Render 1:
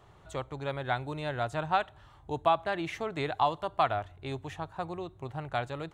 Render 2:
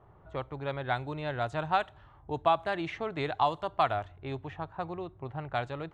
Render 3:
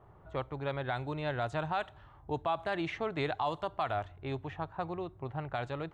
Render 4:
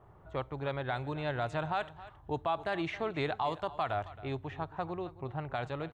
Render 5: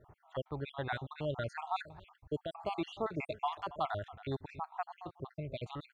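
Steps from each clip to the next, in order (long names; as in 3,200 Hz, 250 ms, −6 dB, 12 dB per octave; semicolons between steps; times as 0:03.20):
low-pass that shuts in the quiet parts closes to 1,200 Hz, open at −24.5 dBFS
brickwall limiter −22.5 dBFS, peak gain reduction 10 dB
single-tap delay 271 ms −17 dB
time-frequency cells dropped at random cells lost 57%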